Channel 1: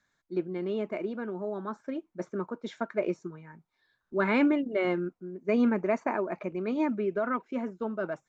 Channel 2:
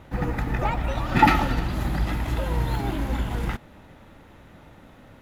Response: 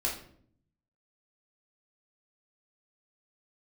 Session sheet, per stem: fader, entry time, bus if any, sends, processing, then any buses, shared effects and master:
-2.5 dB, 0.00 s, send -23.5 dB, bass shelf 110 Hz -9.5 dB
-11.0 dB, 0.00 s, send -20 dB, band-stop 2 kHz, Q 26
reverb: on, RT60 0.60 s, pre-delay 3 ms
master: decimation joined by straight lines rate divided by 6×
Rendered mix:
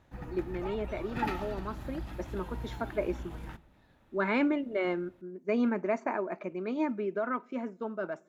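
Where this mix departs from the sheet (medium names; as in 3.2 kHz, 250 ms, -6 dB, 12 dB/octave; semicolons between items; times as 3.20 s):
stem 2 -11.0 dB -> -17.0 dB; master: missing decimation joined by straight lines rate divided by 6×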